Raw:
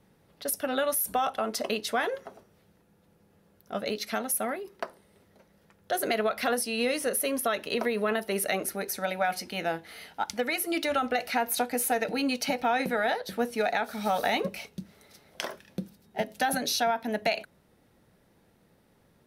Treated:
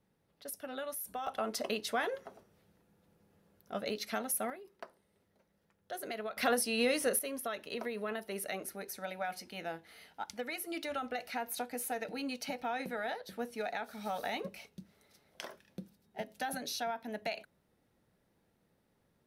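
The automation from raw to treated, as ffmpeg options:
-af "asetnsamples=n=441:p=0,asendcmd='1.27 volume volume -5.5dB;4.5 volume volume -13dB;6.37 volume volume -2.5dB;7.19 volume volume -10.5dB',volume=-13dB"

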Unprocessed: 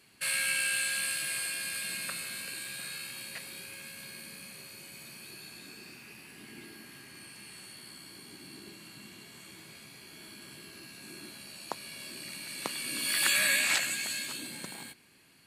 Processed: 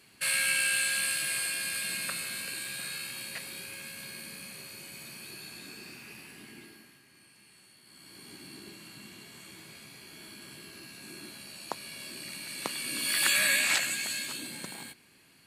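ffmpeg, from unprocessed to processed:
-af "volume=13.5dB,afade=t=out:st=6.19:d=0.81:silence=0.237137,afade=t=in:st=7.84:d=0.46:silence=0.281838"

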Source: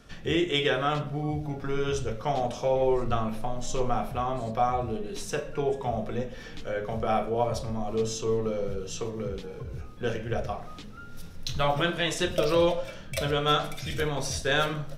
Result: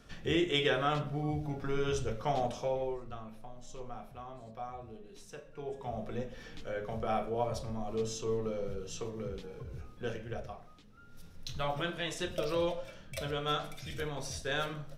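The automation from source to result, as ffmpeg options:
-af "volume=14.5dB,afade=t=out:st=2.43:d=0.58:silence=0.223872,afade=t=in:st=5.52:d=0.64:silence=0.298538,afade=t=out:st=9.88:d=0.94:silence=0.298538,afade=t=in:st=10.82:d=0.55:silence=0.398107"

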